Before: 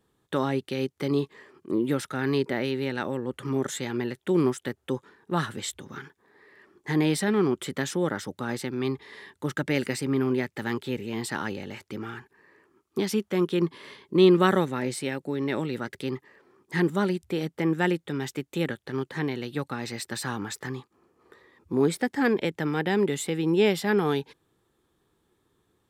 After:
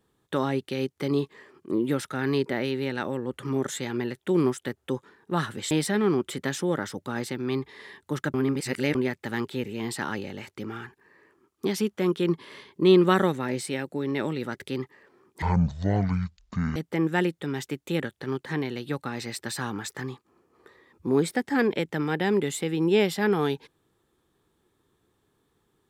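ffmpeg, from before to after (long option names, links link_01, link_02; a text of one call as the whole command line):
ffmpeg -i in.wav -filter_complex "[0:a]asplit=6[link_01][link_02][link_03][link_04][link_05][link_06];[link_01]atrim=end=5.712[link_07];[link_02]atrim=start=7.038:end=9.672[link_08];[link_03]atrim=start=9.668:end=10.282,asetpts=PTS-STARTPTS,areverse[link_09];[link_04]atrim=start=10.278:end=16.754[link_10];[link_05]atrim=start=16.75:end=17.42,asetpts=PTS-STARTPTS,asetrate=22050,aresample=44100[link_11];[link_06]atrim=start=17.416[link_12];[link_07][link_08]acrossfade=duration=0.004:curve1=hsin:curve2=hsin[link_13];[link_13][link_09]acrossfade=duration=0.004:curve1=hsin:curve2=hsin[link_14];[link_14][link_10]acrossfade=duration=0.004:curve1=hsin:curve2=hsin[link_15];[link_15][link_11]acrossfade=duration=0.004:curve1=hsin:curve2=hsin[link_16];[link_16][link_12]acrossfade=duration=0.004:curve1=hsin:curve2=hsin" out.wav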